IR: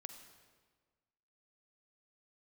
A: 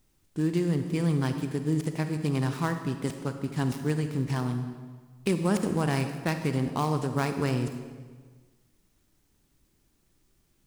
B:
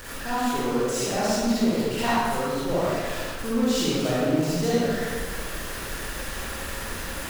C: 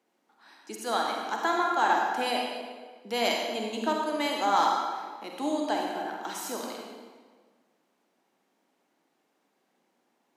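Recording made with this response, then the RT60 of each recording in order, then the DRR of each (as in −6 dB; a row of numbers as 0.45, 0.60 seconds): A; 1.5, 1.5, 1.5 seconds; 7.0, −9.0, −0.5 decibels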